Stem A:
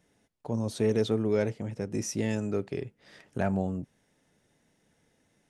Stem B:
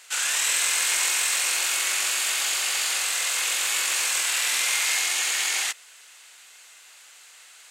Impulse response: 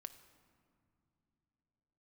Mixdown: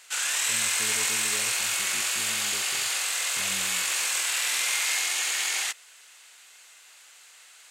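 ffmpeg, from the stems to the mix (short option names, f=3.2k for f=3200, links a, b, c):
-filter_complex "[0:a]flanger=delay=8.3:depth=9.8:regen=-81:speed=0.36:shape=sinusoidal,volume=-15dB,asplit=2[a][b];[b]volume=-5dB[c];[1:a]volume=-2.5dB[d];[2:a]atrim=start_sample=2205[e];[c][e]afir=irnorm=-1:irlink=0[f];[a][d][f]amix=inputs=3:normalize=0"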